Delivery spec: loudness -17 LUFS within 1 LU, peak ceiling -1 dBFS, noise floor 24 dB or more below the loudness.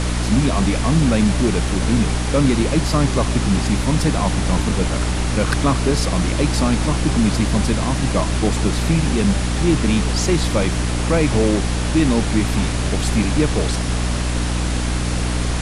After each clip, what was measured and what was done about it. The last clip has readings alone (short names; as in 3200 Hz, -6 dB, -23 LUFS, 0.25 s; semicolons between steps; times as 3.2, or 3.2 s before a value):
hum 60 Hz; harmonics up to 300 Hz; hum level -19 dBFS; noise floor -21 dBFS; noise floor target -43 dBFS; loudness -18.5 LUFS; peak -3.5 dBFS; loudness target -17.0 LUFS
-> de-hum 60 Hz, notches 5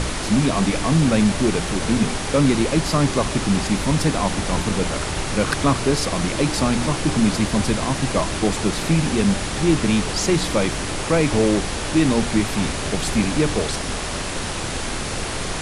hum none; noise floor -27 dBFS; noise floor target -45 dBFS
-> noise print and reduce 18 dB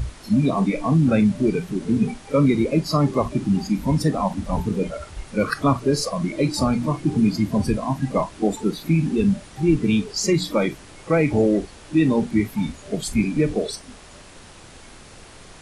noise floor -44 dBFS; noise floor target -46 dBFS
-> noise print and reduce 6 dB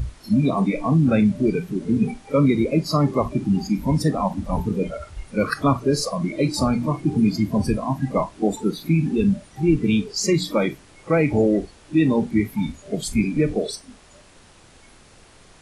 noise floor -50 dBFS; loudness -21.5 LUFS; peak -6.0 dBFS; loudness target -17.0 LUFS
-> gain +4.5 dB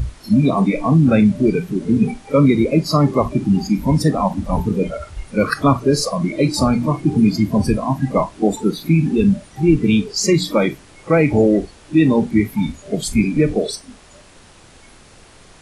loudness -17.0 LUFS; peak -1.5 dBFS; noise floor -46 dBFS